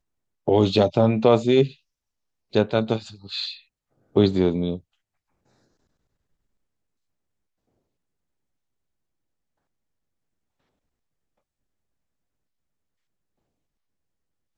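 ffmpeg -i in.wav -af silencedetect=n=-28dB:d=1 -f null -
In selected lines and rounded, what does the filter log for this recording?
silence_start: 4.76
silence_end: 14.58 | silence_duration: 9.81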